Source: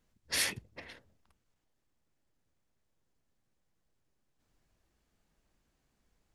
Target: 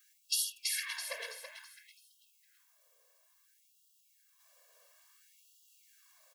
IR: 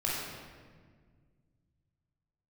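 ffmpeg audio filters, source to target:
-filter_complex "[0:a]aemphasis=mode=production:type=50kf,bandreject=f=1300:w=29,aecho=1:1:1.8:0.99,acompressor=threshold=0.0158:ratio=8,asplit=6[s0][s1][s2][s3][s4][s5];[s1]adelay=330,afreqshift=-31,volume=0.708[s6];[s2]adelay=660,afreqshift=-62,volume=0.292[s7];[s3]adelay=990,afreqshift=-93,volume=0.119[s8];[s4]adelay=1320,afreqshift=-124,volume=0.049[s9];[s5]adelay=1650,afreqshift=-155,volume=0.02[s10];[s0][s6][s7][s8][s9][s10]amix=inputs=6:normalize=0,asplit=2[s11][s12];[1:a]atrim=start_sample=2205,afade=t=out:st=0.18:d=0.01,atrim=end_sample=8379,lowpass=2100[s13];[s12][s13]afir=irnorm=-1:irlink=0,volume=0.299[s14];[s11][s14]amix=inputs=2:normalize=0,afftfilt=real='re*gte(b*sr/1024,410*pow(2800/410,0.5+0.5*sin(2*PI*0.58*pts/sr)))':imag='im*gte(b*sr/1024,410*pow(2800/410,0.5+0.5*sin(2*PI*0.58*pts/sr)))':win_size=1024:overlap=0.75,volume=1.88"

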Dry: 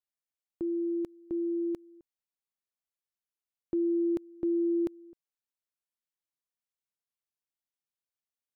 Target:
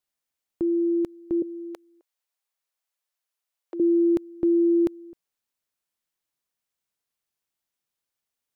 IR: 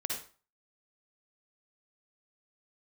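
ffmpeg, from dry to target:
-filter_complex "[0:a]asettb=1/sr,asplit=3[s0][s1][s2];[s0]atrim=end=1.424[s3];[s1]atrim=start=1.42:end=3.8,asetpts=PTS-STARTPTS,afade=t=in:d=0.004:c=qsin,afade=t=out:st=2.376:d=0.004:c=qsin,highpass=f=490:w=0.5412,highpass=f=490:w=1.3066[s4];[s2]atrim=start=3.796[s5];[s3][s4]acrossfade=d=0.004:c1=hsin:c2=qsin[s6];[s6][s5]acrossfade=d=0.004:c1=qsin:c2=hsin,volume=2.51"

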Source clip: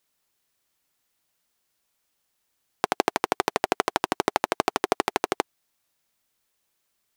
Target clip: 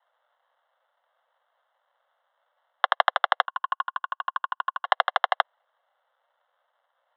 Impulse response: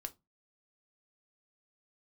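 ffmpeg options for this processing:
-filter_complex "[0:a]acrusher=samples=21:mix=1:aa=0.000001,asettb=1/sr,asplit=3[s0][s1][s2];[s0]atrim=end=3.454[s3];[s1]atrim=start=3.45:end=4.85,asetpts=PTS-STARTPTS,afade=t=in:d=0.004:c=qsin,afade=t=out:st=1.396:d=0.004:c=qsin,asplit=3[s4][s5][s6];[s4]bandpass=f=730:t=q:w=8,volume=1[s7];[s5]bandpass=f=1090:t=q:w=8,volume=0.501[s8];[s6]bandpass=f=2440:t=q:w=8,volume=0.355[s9];[s7][s8][s9]amix=inputs=3:normalize=0[s10];[s2]atrim=start=4.846[s11];[s3][s10]acrossfade=d=0.004:c1=hsin:c2=qsin[s12];[s12][s11]acrossfade=d=0.004:c1=qsin:c2=hsin,highpass=f=170:t=q:w=0.5412,highpass=f=170:t=q:w=1.307,lowpass=f=3300:t=q:w=0.5176,lowpass=f=3300:t=q:w=0.7071,lowpass=f=3300:t=q:w=1.932,afreqshift=350,volume=1.33"

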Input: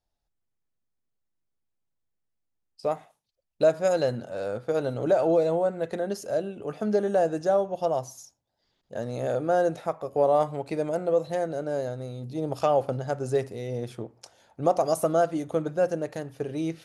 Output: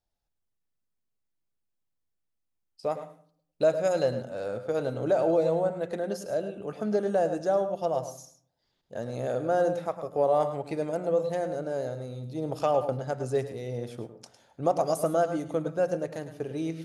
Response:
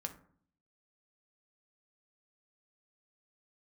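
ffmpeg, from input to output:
-filter_complex "[0:a]asplit=2[s0][s1];[1:a]atrim=start_sample=2205,adelay=105[s2];[s1][s2]afir=irnorm=-1:irlink=0,volume=0.355[s3];[s0][s3]amix=inputs=2:normalize=0,volume=0.75"

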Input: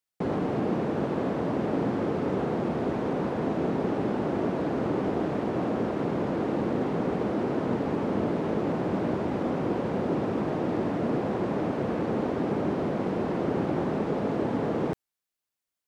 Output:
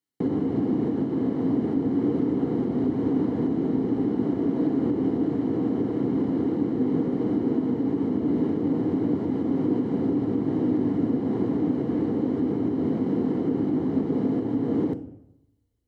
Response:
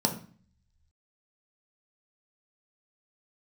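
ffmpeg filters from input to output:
-filter_complex "[0:a]equalizer=f=270:w=2.2:g=13,alimiter=limit=0.126:level=0:latency=1:release=472,asplit=2[s0][s1];[1:a]atrim=start_sample=2205,asetrate=22932,aresample=44100[s2];[s1][s2]afir=irnorm=-1:irlink=0,volume=0.188[s3];[s0][s3]amix=inputs=2:normalize=0,volume=0.562"

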